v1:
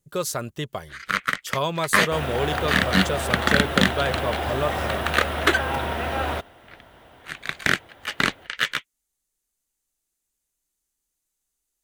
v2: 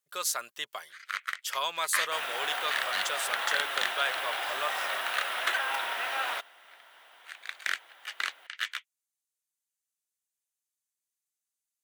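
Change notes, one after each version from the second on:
first sound −9.0 dB
master: add high-pass filter 1,200 Hz 12 dB per octave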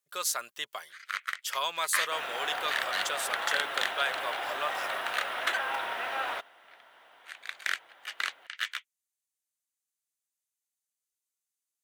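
second sound: add spectral tilt −2.5 dB per octave

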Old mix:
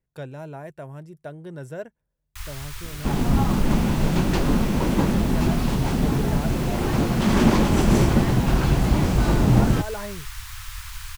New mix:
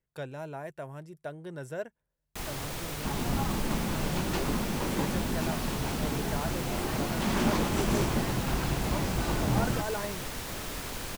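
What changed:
first sound: remove inverse Chebyshev band-stop filter 180–550 Hz, stop band 50 dB
second sound −6.0 dB
master: add low-shelf EQ 350 Hz −6.5 dB

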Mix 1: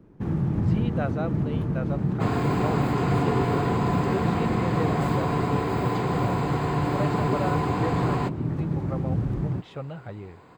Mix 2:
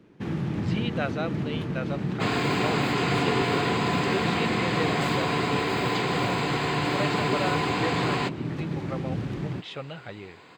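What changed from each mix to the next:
master: add meter weighting curve D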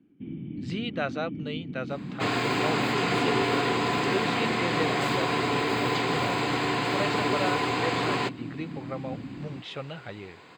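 first sound: add formant resonators in series i

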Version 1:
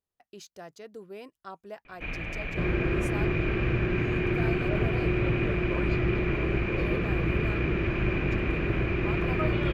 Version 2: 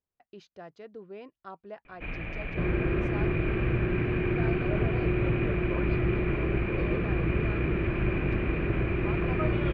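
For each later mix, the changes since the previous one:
master: add high-frequency loss of the air 260 metres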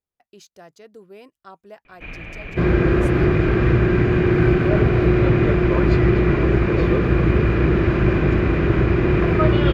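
second sound +11.0 dB
master: remove high-frequency loss of the air 260 metres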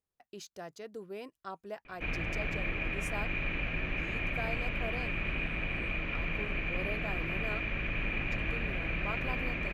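second sound: muted

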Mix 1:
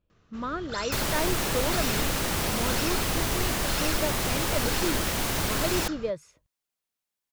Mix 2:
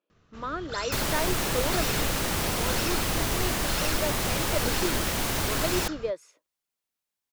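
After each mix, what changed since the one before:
speech: add high-pass filter 300 Hz 24 dB per octave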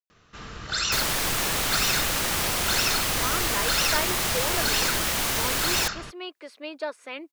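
speech: entry +2.80 s
first sound +6.0 dB
master: add tilt shelving filter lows −4.5 dB, about 680 Hz

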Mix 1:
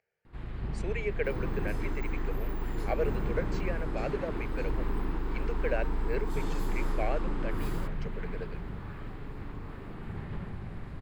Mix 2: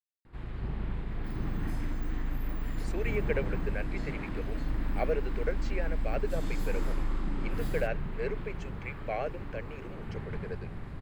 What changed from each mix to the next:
speech: entry +2.10 s
second sound: add linear-phase brick-wall band-stop 330–2,500 Hz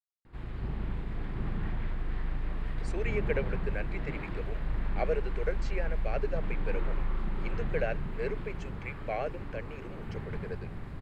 second sound: muted

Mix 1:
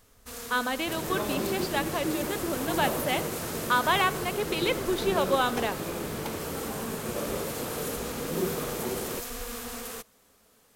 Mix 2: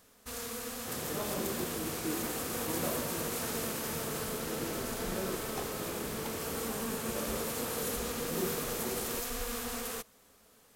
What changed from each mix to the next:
speech: muted
second sound −6.0 dB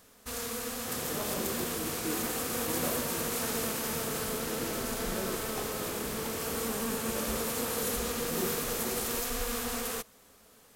first sound +3.5 dB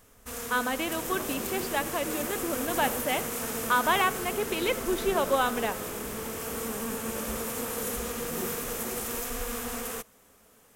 speech: unmuted
second sound: send off
master: add parametric band 4,300 Hz −6.5 dB 0.61 octaves

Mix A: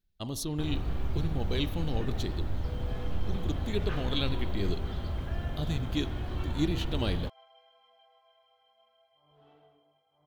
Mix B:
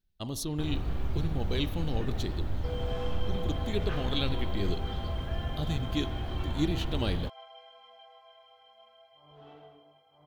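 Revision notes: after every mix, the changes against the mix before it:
second sound +9.0 dB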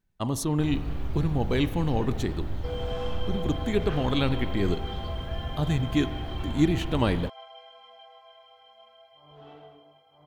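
speech: add octave-band graphic EQ 125/250/500/1,000/2,000/4,000/8,000 Hz +7/+6/+4/+11/+7/−5/+7 dB
second sound +3.5 dB

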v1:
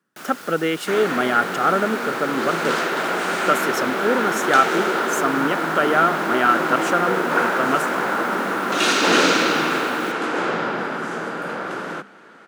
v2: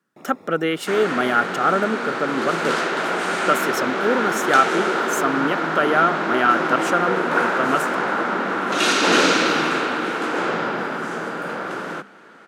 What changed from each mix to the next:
first sound: add moving average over 29 samples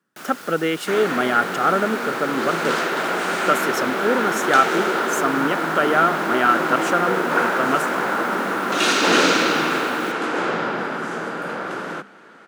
first sound: remove moving average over 29 samples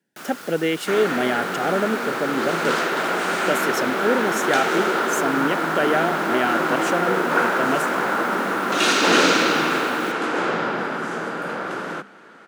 speech: add Butterworth band-reject 1,200 Hz, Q 1.8

